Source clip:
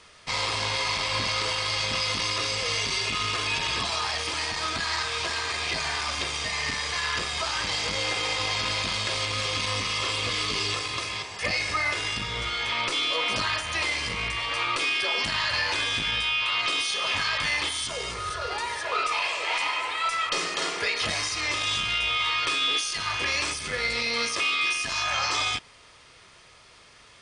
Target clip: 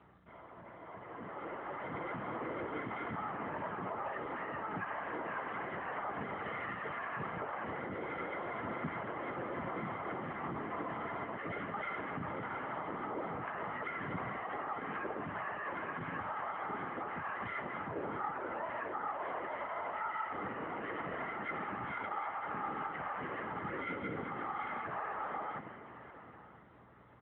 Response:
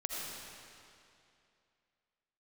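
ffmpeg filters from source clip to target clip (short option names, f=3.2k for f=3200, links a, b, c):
-filter_complex "[0:a]aemphasis=mode=reproduction:type=75fm,bandreject=f=370:w=12,afftfilt=real='re*between(b*sr/4096,130,2100)':imag='im*between(b*sr/4096,130,2100)':win_size=4096:overlap=0.75,equalizer=f=220:t=o:w=0.94:g=6,areverse,acompressor=threshold=-39dB:ratio=8,areverse,alimiter=level_in=16dB:limit=-24dB:level=0:latency=1:release=28,volume=-16dB,dynaudnorm=f=260:g=11:m=15.5dB,afftfilt=real='hypot(re,im)*cos(2*PI*random(0))':imag='hypot(re,im)*sin(2*PI*random(1))':win_size=512:overlap=0.75,aeval=exprs='val(0)+0.00126*(sin(2*PI*60*n/s)+sin(2*PI*2*60*n/s)/2+sin(2*PI*3*60*n/s)/3+sin(2*PI*4*60*n/s)/4+sin(2*PI*5*60*n/s)/5)':c=same,asplit=3[a][b][c];[b]asetrate=29433,aresample=44100,atempo=1.49831,volume=-1dB[d];[c]asetrate=66075,aresample=44100,atempo=0.66742,volume=-13dB[e];[a][d][e]amix=inputs=3:normalize=0,aecho=1:1:946|1892|2838:0.0944|0.0349|0.0129,volume=-3dB" -ar 8000 -c:a libopencore_amrnb -b:a 10200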